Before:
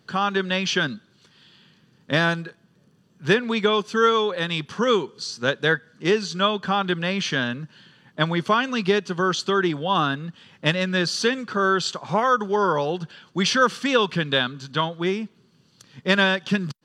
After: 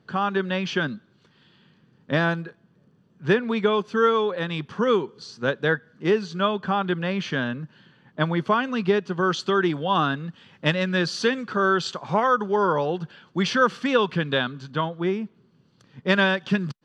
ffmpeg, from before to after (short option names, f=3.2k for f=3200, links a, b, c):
-af "asetnsamples=n=441:p=0,asendcmd='9.23 lowpass f 3400;12.27 lowpass f 2200;14.7 lowpass f 1300;16.07 lowpass f 2800',lowpass=f=1.6k:p=1"